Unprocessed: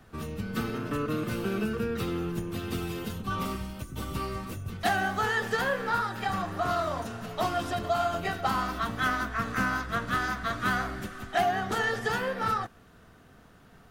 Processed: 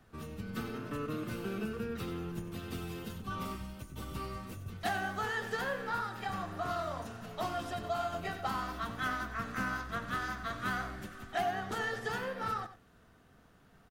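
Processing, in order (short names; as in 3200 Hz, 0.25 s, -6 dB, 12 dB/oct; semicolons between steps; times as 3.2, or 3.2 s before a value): echo 94 ms -12.5 dB; gain -7.5 dB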